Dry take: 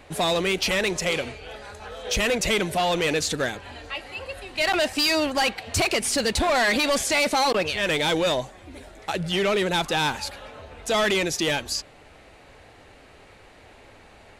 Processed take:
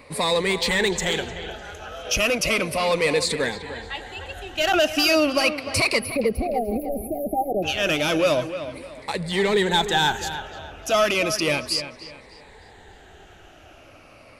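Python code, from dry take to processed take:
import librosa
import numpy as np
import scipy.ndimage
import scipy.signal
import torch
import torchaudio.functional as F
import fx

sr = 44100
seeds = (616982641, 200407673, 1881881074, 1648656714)

y = fx.spec_ripple(x, sr, per_octave=0.95, drift_hz=-0.34, depth_db=11)
y = fx.spec_erase(y, sr, start_s=6.0, length_s=1.63, low_hz=810.0, high_hz=9800.0)
y = fx.echo_wet_lowpass(y, sr, ms=301, feedback_pct=32, hz=3700.0, wet_db=-11.0)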